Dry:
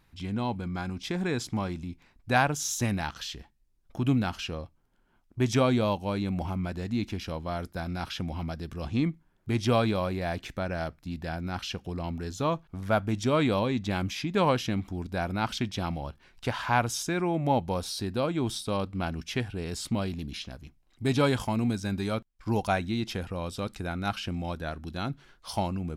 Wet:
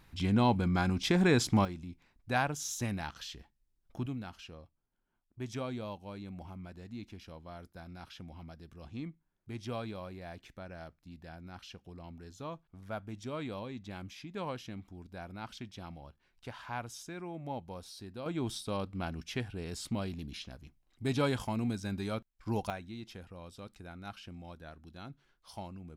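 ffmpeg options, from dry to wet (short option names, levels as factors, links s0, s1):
-af "asetnsamples=n=441:p=0,asendcmd='1.65 volume volume -7dB;4.06 volume volume -14.5dB;18.26 volume volume -6dB;22.7 volume volume -14.5dB',volume=1.58"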